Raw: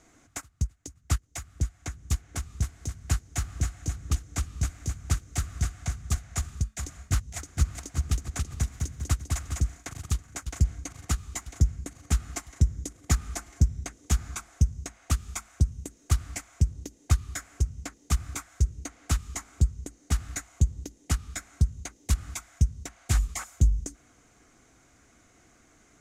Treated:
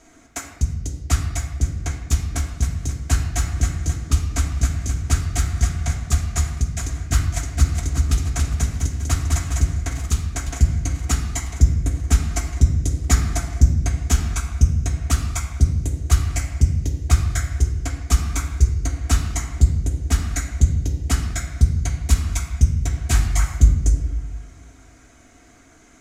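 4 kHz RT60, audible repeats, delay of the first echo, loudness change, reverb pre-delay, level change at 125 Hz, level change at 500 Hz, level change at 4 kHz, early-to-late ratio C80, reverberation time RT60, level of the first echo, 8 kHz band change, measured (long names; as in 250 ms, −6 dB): 0.85 s, no echo audible, no echo audible, +9.0 dB, 3 ms, +9.0 dB, +9.0 dB, +8.0 dB, 7.5 dB, 1.1 s, no echo audible, +7.5 dB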